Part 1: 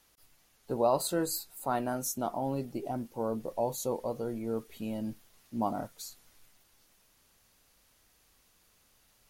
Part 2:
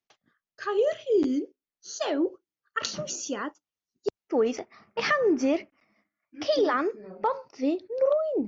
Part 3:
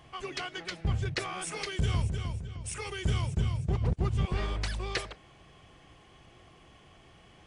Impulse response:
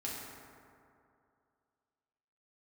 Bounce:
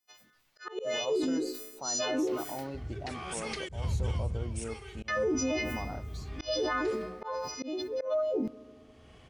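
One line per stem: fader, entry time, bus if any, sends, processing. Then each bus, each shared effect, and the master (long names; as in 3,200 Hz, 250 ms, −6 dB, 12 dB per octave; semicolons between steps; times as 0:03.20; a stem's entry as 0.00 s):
−4.0 dB, 0.15 s, no send, low-pass filter 3,900 Hz 12 dB per octave; spectral tilt +1.5 dB per octave; brickwall limiter −25 dBFS, peak gain reduction 9 dB
−2.0 dB, 0.00 s, muted 0:02.67–0:05.08, send −20.5 dB, every partial snapped to a pitch grid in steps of 3 semitones; level that may fall only so fast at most 72 dB per second
−2.0 dB, 1.90 s, send −13.5 dB, parametric band 71 Hz +8.5 dB 1.5 octaves; mains-hum notches 50/100/150 Hz; brickwall limiter −21.5 dBFS, peak gain reduction 8.5 dB; automatic ducking −24 dB, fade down 0.55 s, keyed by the second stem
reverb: on, RT60 2.5 s, pre-delay 4 ms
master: volume swells 220 ms; brickwall limiter −22.5 dBFS, peak gain reduction 8 dB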